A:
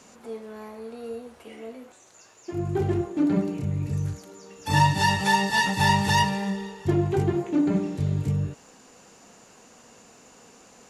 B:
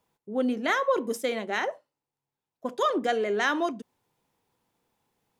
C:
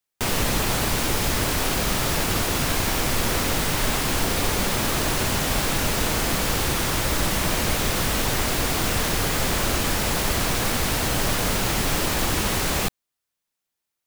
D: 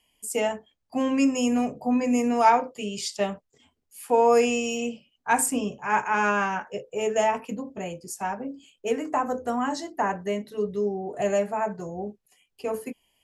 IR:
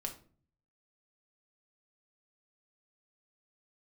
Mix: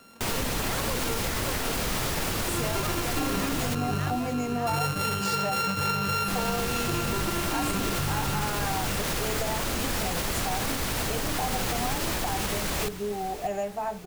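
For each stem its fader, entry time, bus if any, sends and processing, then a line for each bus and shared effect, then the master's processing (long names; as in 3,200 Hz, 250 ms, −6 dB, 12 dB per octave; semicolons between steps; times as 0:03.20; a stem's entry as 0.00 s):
−1.0 dB, 0.00 s, no send, echo send −8.5 dB, samples sorted by size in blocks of 32 samples; downward compressor 1.5 to 1, threshold −27 dBFS, peak gain reduction 5 dB
−11.0 dB, 0.00 s, no send, echo send −3 dB, no processing
−4.0 dB, 0.00 s, muted 0:03.75–0:06.28, no send, echo send −16 dB, no processing
0.0 dB, 2.25 s, no send, no echo send, parametric band 770 Hz +13 dB 0.2 octaves; downward compressor 2.5 to 1, threshold −31 dBFS, peak gain reduction 13.5 dB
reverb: not used
echo: repeating echo 587 ms, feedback 48%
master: brickwall limiter −18.5 dBFS, peak gain reduction 8 dB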